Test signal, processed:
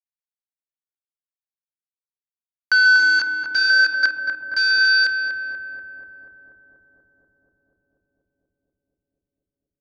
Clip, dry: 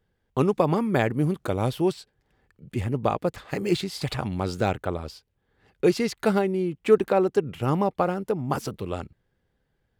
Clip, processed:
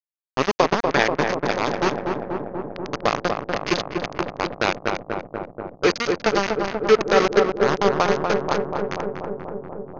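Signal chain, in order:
delay that plays each chunk backwards 168 ms, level −10.5 dB
low-pass that shuts in the quiet parts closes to 490 Hz, open at −18.5 dBFS
high-pass filter 260 Hz 12 dB per octave
high-shelf EQ 2,400 Hz +9 dB
in parallel at −2.5 dB: downward compressor 16 to 1, threshold −32 dBFS
on the sum: centre clipping without the shift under −18 dBFS
Chebyshev low-pass with heavy ripple 6,500 Hz, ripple 3 dB
on a send: feedback echo with a low-pass in the loop 242 ms, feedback 84%, low-pass 1,400 Hz, level −3.5 dB
on the sum: level +4.5 dB

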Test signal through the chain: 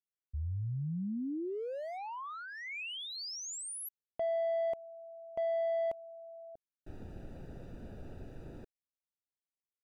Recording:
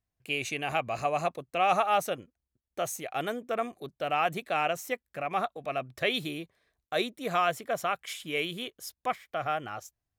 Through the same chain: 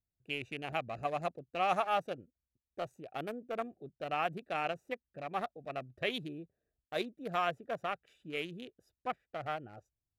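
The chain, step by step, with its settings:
adaptive Wiener filter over 41 samples
level −5 dB

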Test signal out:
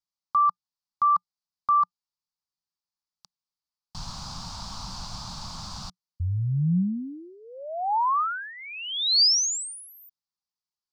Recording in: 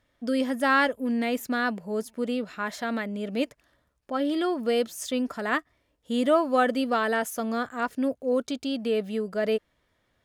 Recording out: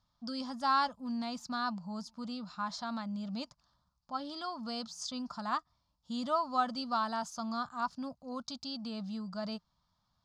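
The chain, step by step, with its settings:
drawn EQ curve 120 Hz 0 dB, 180 Hz +5 dB, 410 Hz −24 dB, 860 Hz +3 dB, 1,200 Hz +3 dB, 1,900 Hz −17 dB, 3,000 Hz −8 dB, 4,700 Hz +9 dB, 7,200 Hz −3 dB, 12,000 Hz −24 dB
level −5 dB

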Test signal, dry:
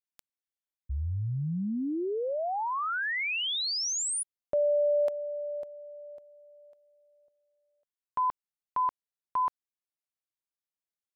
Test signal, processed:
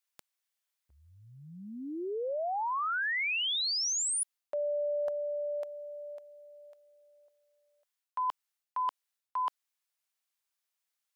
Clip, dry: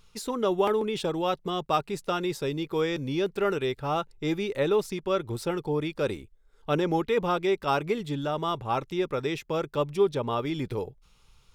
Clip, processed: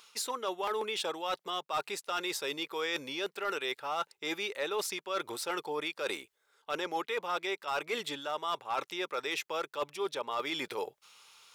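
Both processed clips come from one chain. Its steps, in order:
Bessel high-pass filter 930 Hz, order 2
reversed playback
downward compressor 4 to 1, threshold −41 dBFS
reversed playback
hard clipping −34 dBFS
level +9 dB

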